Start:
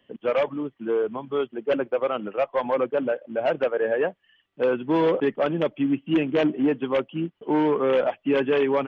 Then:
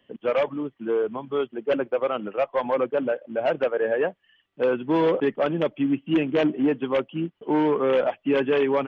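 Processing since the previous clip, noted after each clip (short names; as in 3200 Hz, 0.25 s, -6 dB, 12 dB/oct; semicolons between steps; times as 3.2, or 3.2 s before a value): nothing audible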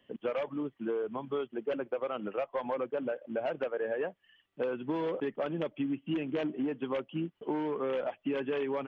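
compressor, threshold -27 dBFS, peak gain reduction 10 dB; gain -3 dB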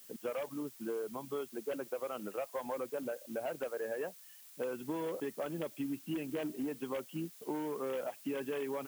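added noise blue -51 dBFS; gain -5 dB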